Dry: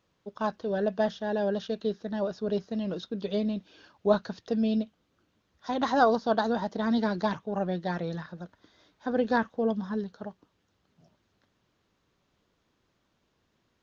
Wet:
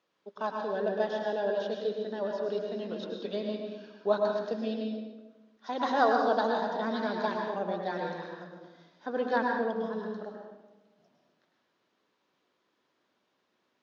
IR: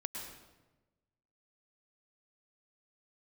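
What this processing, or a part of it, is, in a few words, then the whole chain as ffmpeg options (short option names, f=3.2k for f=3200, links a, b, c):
supermarket ceiling speaker: -filter_complex "[0:a]highpass=320,lowpass=5.7k[a];[1:a]atrim=start_sample=2205[b];[a][b]afir=irnorm=-1:irlink=0"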